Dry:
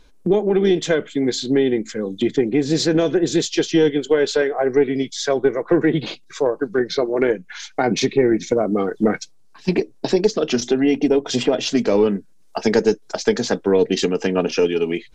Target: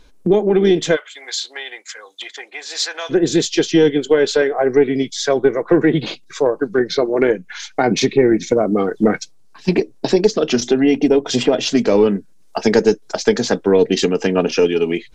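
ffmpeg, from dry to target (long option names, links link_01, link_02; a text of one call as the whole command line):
ffmpeg -i in.wav -filter_complex "[0:a]asplit=3[link_01][link_02][link_03];[link_01]afade=type=out:start_time=0.95:duration=0.02[link_04];[link_02]highpass=frequency=840:width=0.5412,highpass=frequency=840:width=1.3066,afade=type=in:start_time=0.95:duration=0.02,afade=type=out:start_time=3.09:duration=0.02[link_05];[link_03]afade=type=in:start_time=3.09:duration=0.02[link_06];[link_04][link_05][link_06]amix=inputs=3:normalize=0,volume=3dB" out.wav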